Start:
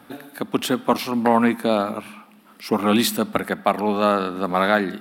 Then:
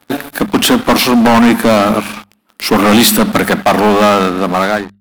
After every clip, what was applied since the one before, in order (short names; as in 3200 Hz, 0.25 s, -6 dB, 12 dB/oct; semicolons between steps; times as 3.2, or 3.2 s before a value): ending faded out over 1.13 s; sample leveller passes 5; notches 50/100/150/200 Hz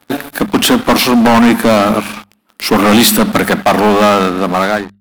nothing audible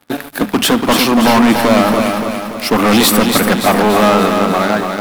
lo-fi delay 0.287 s, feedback 55%, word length 6-bit, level -5 dB; gain -2.5 dB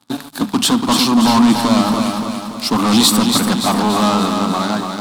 graphic EQ 125/250/500/1000/2000/4000/8000 Hz +8/+9/-4/+10/-5/+11/+10 dB; gain -10.5 dB